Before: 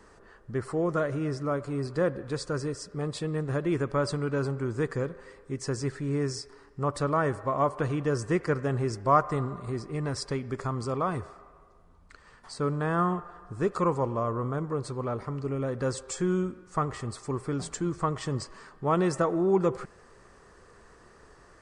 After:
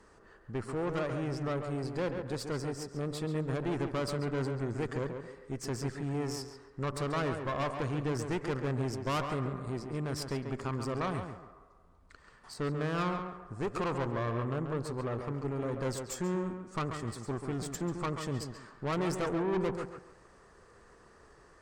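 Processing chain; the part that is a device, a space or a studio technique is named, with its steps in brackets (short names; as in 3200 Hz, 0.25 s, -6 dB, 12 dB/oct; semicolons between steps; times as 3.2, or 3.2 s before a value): rockabilly slapback (tube stage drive 29 dB, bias 0.75; tape echo 0.138 s, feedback 33%, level -5 dB, low-pass 2400 Hz)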